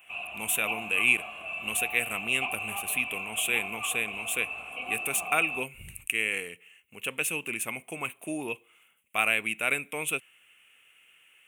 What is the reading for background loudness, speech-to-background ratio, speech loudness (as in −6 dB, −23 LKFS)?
−35.0 LKFS, 6.0 dB, −29.0 LKFS